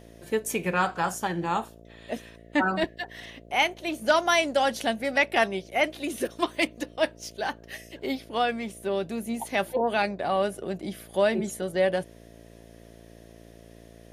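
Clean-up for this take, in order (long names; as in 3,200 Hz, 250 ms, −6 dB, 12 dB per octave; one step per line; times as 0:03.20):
hum removal 56.8 Hz, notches 12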